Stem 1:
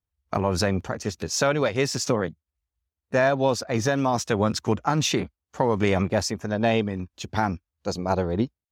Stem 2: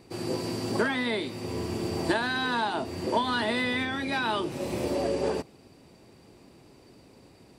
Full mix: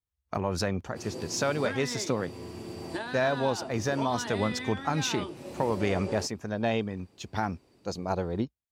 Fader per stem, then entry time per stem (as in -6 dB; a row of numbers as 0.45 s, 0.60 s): -6.0 dB, -9.0 dB; 0.00 s, 0.85 s